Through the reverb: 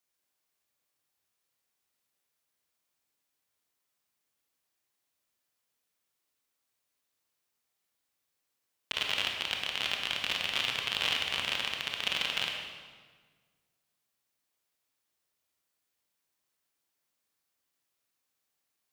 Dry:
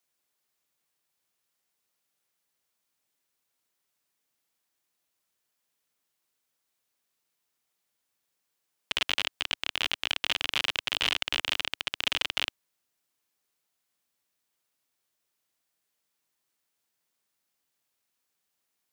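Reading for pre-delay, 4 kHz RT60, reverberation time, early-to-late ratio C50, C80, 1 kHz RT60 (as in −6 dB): 22 ms, 1.2 s, 1.5 s, 3.0 dB, 4.5 dB, 1.5 s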